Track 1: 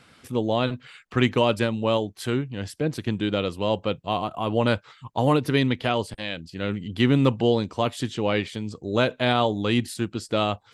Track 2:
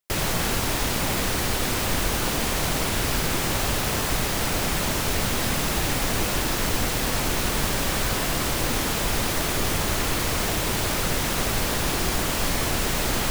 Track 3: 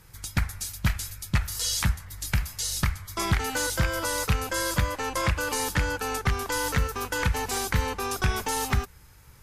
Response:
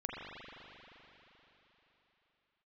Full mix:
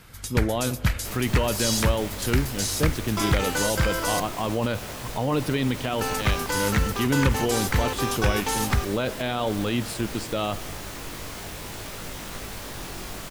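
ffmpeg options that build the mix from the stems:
-filter_complex "[0:a]volume=0dB,asplit=2[a][b];[b]volume=-20dB[c];[1:a]flanger=delay=19:depth=2.3:speed=0.54,adelay=950,volume=-8.5dB[d];[2:a]volume=1.5dB,asplit=3[e][f][g];[e]atrim=end=4.2,asetpts=PTS-STARTPTS,afade=t=out:st=4.196:d=0.004:c=hsin[h];[f]atrim=start=4.2:end=5.99,asetpts=PTS-STARTPTS,volume=0[i];[g]atrim=start=5.99,asetpts=PTS-STARTPTS,afade=t=in:d=0.004:c=hsin[j];[h][i][j]concat=n=3:v=0:a=1[k];[a][d]amix=inputs=2:normalize=0,alimiter=limit=-16dB:level=0:latency=1:release=18,volume=0dB[l];[3:a]atrim=start_sample=2205[m];[c][m]afir=irnorm=-1:irlink=0[n];[k][l][n]amix=inputs=3:normalize=0"

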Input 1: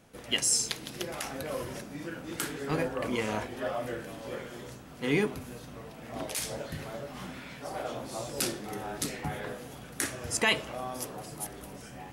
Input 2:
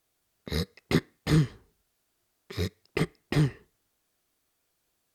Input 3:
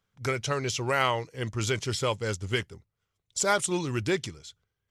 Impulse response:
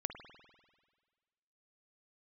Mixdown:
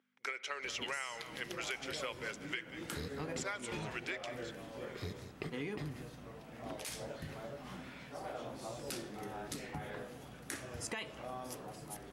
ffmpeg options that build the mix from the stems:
-filter_complex "[0:a]adelay=500,volume=-6dB[a];[1:a]acompressor=threshold=-28dB:ratio=6,adelay=2450,volume=-9.5dB,asplit=3[b][c][d];[c]volume=-9dB[e];[d]volume=-12.5dB[f];[2:a]aeval=exprs='val(0)+0.00631*(sin(2*PI*50*n/s)+sin(2*PI*2*50*n/s)/2+sin(2*PI*3*50*n/s)/3+sin(2*PI*4*50*n/s)/4+sin(2*PI*5*50*n/s)/5)':c=same,highpass=f=350:w=0.5412,highpass=f=350:w=1.3066,equalizer=f=2.1k:t=o:w=1.6:g=14,volume=-15dB,asplit=3[g][h][i];[h]volume=-10dB[j];[i]volume=-16dB[k];[a][b]amix=inputs=2:normalize=0,highshelf=f=6.6k:g=-6,acompressor=threshold=-40dB:ratio=1.5,volume=0dB[l];[3:a]atrim=start_sample=2205[m];[e][j]amix=inputs=2:normalize=0[n];[n][m]afir=irnorm=-1:irlink=0[o];[f][k]amix=inputs=2:normalize=0,aecho=0:1:186:1[p];[g][l][o][p]amix=inputs=4:normalize=0,acompressor=threshold=-36dB:ratio=16"

